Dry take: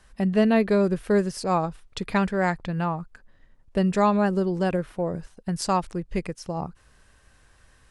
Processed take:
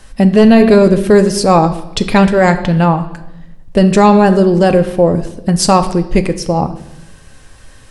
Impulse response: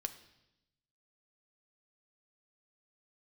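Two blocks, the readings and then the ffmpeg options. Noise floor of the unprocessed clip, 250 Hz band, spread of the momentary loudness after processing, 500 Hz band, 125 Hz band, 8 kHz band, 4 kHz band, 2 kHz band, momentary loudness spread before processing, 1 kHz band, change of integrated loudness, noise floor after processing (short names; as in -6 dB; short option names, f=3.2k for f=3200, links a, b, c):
-59 dBFS, +14.0 dB, 10 LU, +14.5 dB, +14.5 dB, +17.0 dB, +16.0 dB, +12.0 dB, 12 LU, +13.5 dB, +14.0 dB, -40 dBFS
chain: -filter_complex "[0:a]equalizer=f=1.4k:w=0.89:g=-5[a];[1:a]atrim=start_sample=2205[b];[a][b]afir=irnorm=-1:irlink=0,apsyclip=20dB,volume=-1.5dB"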